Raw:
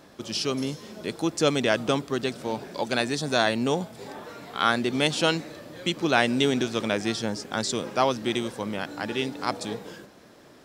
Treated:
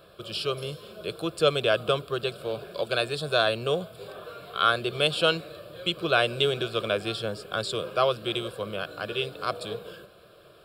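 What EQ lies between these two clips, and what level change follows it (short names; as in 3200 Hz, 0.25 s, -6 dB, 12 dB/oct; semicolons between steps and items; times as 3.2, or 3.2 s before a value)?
fixed phaser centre 1300 Hz, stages 8; +2.0 dB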